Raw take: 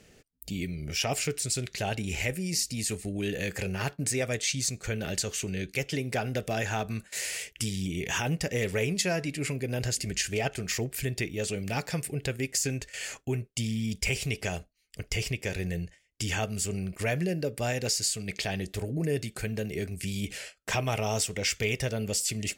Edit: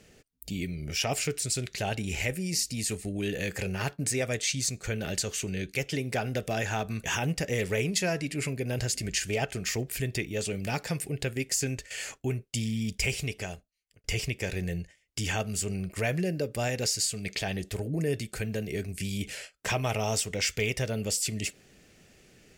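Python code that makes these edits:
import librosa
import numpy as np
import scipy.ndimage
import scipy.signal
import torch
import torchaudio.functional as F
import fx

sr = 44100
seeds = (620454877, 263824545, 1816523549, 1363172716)

y = fx.edit(x, sr, fx.cut(start_s=7.04, length_s=1.03),
    fx.fade_out_span(start_s=14.11, length_s=0.96), tone=tone)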